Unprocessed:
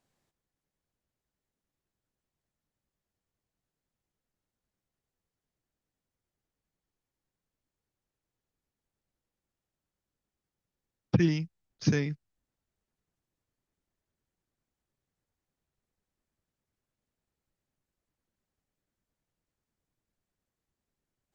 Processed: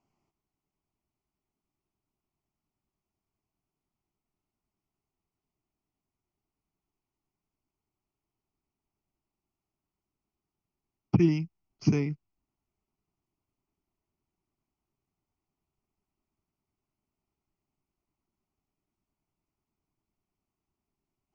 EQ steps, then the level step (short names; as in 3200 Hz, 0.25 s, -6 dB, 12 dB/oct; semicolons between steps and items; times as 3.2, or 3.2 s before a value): air absorption 80 m; bell 440 Hz +14 dB 1.3 oct; fixed phaser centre 2500 Hz, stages 8; 0.0 dB